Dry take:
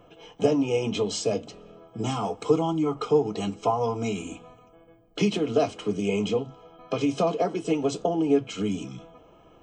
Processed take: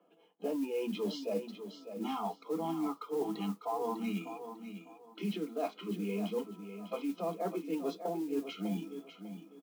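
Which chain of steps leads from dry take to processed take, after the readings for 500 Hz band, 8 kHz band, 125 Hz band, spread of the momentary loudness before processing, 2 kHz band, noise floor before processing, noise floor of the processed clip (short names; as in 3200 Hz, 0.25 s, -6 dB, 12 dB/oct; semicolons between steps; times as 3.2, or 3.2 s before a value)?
-11.5 dB, -16.5 dB, -13.0 dB, 11 LU, -11.0 dB, -55 dBFS, -64 dBFS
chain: LPF 4600 Hz 24 dB/oct; spectral noise reduction 14 dB; steep high-pass 170 Hz 96 dB/oct; high shelf 2100 Hz -7.5 dB; reverse; compressor 10:1, threshold -32 dBFS, peak gain reduction 16 dB; reverse; feedback echo 0.599 s, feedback 26%, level -10 dB; modulation noise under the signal 24 dB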